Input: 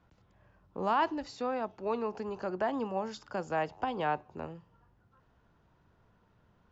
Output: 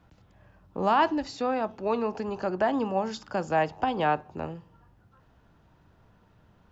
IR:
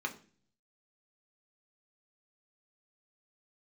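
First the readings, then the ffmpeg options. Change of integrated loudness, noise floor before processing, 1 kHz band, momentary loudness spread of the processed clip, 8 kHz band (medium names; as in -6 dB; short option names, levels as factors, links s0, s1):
+6.0 dB, -69 dBFS, +6.0 dB, 13 LU, no reading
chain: -filter_complex "[0:a]asplit=2[s0][s1];[1:a]atrim=start_sample=2205,lowpass=2300[s2];[s1][s2]afir=irnorm=-1:irlink=0,volume=0.168[s3];[s0][s3]amix=inputs=2:normalize=0,volume=2.11"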